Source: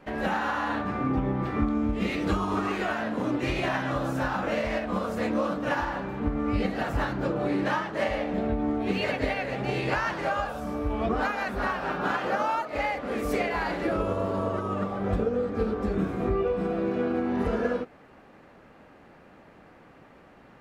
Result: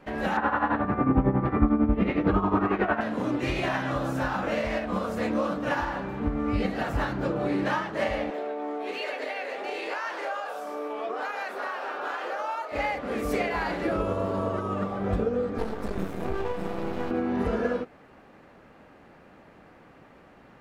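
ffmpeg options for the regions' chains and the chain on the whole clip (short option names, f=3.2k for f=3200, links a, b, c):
-filter_complex "[0:a]asettb=1/sr,asplit=3[a][b][c];[a]atrim=end=0.374[d];[b]atrim=start=0.37:end=3.01,asetpts=PTS-STARTPTS,afade=t=in:d=0.004:c=qsin,afade=t=out:st=2.636:d=0.004:c=qsin,lowpass=1.7k,tremolo=f=11:d=0.71,acontrast=86[e];[c]atrim=start=3.006[f];[d][e]acrossfade=d=0.004:c1=hsin:c2=qsin[g];[g][f]acrossfade=d=0.004:c1=qsin:c2=hsin,asettb=1/sr,asplit=3[h][i][j];[h]atrim=end=8.304[k];[i]atrim=start=8.3:end=12.72,asetpts=PTS-STARTPTS,afade=t=in:d=0.004:c=qsin,afade=t=out:st=4.416:d=0.004:c=qsin,highpass=f=380:w=0.5412,highpass=f=380:w=1.3066,acompressor=threshold=-30dB:ratio=2.5:attack=3.2:release=140:knee=1:detection=peak,asplit=2[l][m];[m]adelay=34,volume=-11.5dB[n];[l][n]amix=inputs=2:normalize=0,atrim=end_sample=194922[o];[j]atrim=start=12.716[p];[k][o]acrossfade=d=0.004:c1=hsin:c2=qsin[q];[q][p]acrossfade=d=0.004:c1=qsin:c2=hsin,asettb=1/sr,asplit=3[r][s][t];[r]atrim=end=15.584[u];[s]atrim=start=15.58:end=17.11,asetpts=PTS-STARTPTS,afade=t=in:d=0.004:c=qsin,afade=t=out:st=1.526:d=0.004:c=qsin,aemphasis=mode=production:type=50kf,aeval=exprs='max(val(0),0)':c=same[v];[t]atrim=start=17.106[w];[u][v]acrossfade=d=0.004:c1=hsin:c2=qsin[x];[x][w]acrossfade=d=0.004:c1=qsin:c2=hsin"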